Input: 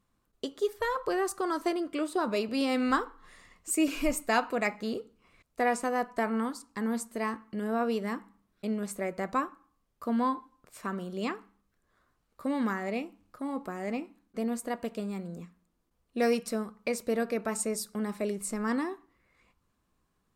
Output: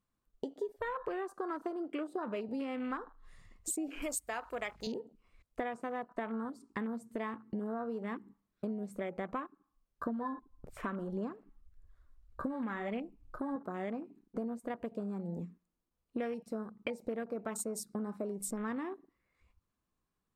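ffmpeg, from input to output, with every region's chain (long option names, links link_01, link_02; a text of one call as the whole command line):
ffmpeg -i in.wav -filter_complex "[0:a]asettb=1/sr,asplit=3[link_01][link_02][link_03];[link_01]atrim=end=4.024[link_04];[link_02]atrim=start=4.02:end=4.87,asetpts=PTS-STARTPTS,afade=type=in:duration=0.004:curve=qsin,afade=type=out:start_time=0.846:duration=0.004:curve=qsin,bass=frequency=250:gain=-15,treble=frequency=4000:gain=12,aeval=exprs='val(0)+0.00224*(sin(2*PI*50*n/s)+sin(2*PI*2*50*n/s)/2+sin(2*PI*3*50*n/s)/3+sin(2*PI*4*50*n/s)/4+sin(2*PI*5*50*n/s)/5)':channel_layout=same,acrusher=bits=7:mix=0:aa=0.5[link_05];[link_03]atrim=start=4.866[link_06];[link_04][link_05]acrossfade=duration=0.004:curve1=hsin:curve2=qsin[link_07];[link_07][link_06]acrossfade=duration=0.004:curve1=qsin:curve2=hsin,asettb=1/sr,asplit=3[link_08][link_09][link_10];[link_08]atrim=end=10.064[link_11];[link_09]atrim=start=10.06:end=13.56,asetpts=PTS-STARTPTS,afade=type=in:duration=0.004:curve=qsin,afade=type=out:start_time=3.496:duration=0.004:curve=qsin,lowshelf=frequency=68:gain=12,aphaser=in_gain=1:out_gain=1:delay=3.7:decay=0.4:speed=1.7:type=sinusoidal[link_12];[link_10]atrim=start=13.556[link_13];[link_11][link_12]acrossfade=duration=0.004:curve1=hsin:curve2=qsin[link_14];[link_14][link_13]acrossfade=duration=0.004:curve1=qsin:curve2=hsin,acompressor=threshold=-41dB:ratio=8,afwtdn=0.00251,volume=6dB" out.wav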